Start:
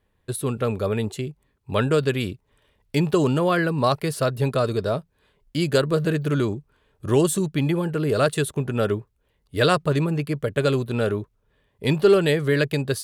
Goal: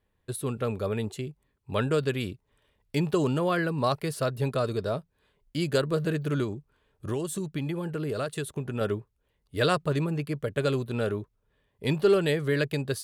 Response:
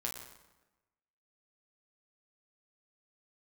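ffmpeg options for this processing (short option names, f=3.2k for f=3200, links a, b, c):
-filter_complex "[0:a]asettb=1/sr,asplit=3[a][b][c];[a]atrim=end=6.434[d];[b]atrim=start=6.43:end=8.81,asetpts=PTS-STARTPTS,afade=t=in:d=0.004:c=qsin,afade=t=out:st=2.376:d=0.004:c=qsin,acompressor=threshold=-22dB:ratio=6[e];[c]atrim=start=8.806[f];[d][e]acrossfade=d=0.004:c1=hsin:c2=qsin[g];[g][f]acrossfade=d=0.004:c1=qsin:c2=hsin,volume=-5.5dB"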